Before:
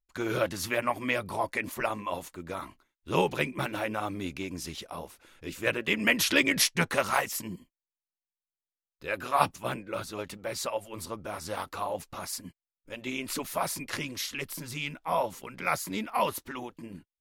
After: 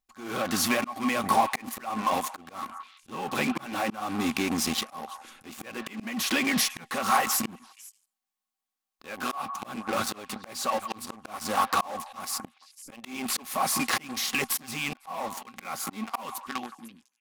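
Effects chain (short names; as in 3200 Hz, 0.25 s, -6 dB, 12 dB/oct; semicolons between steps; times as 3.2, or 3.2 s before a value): ending faded out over 1.84 s; in parallel at -10 dB: fuzz box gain 43 dB, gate -40 dBFS; on the sum: compressor 8:1, threshold -30 dBFS, peak gain reduction 15.5 dB; small resonant body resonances 230/780/1100 Hz, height 15 dB, ringing for 75 ms; on a send: delay with a stepping band-pass 0.167 s, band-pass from 1200 Hz, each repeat 1.4 oct, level -12 dB; on the sum: auto swell 0.384 s; low shelf 310 Hz -10.5 dB; gain +6.5 dB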